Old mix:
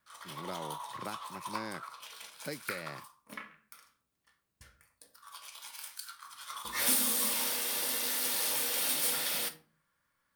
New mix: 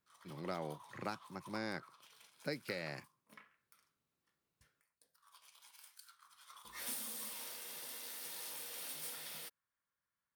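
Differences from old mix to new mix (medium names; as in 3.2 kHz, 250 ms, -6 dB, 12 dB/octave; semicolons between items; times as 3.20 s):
background -11.0 dB; reverb: off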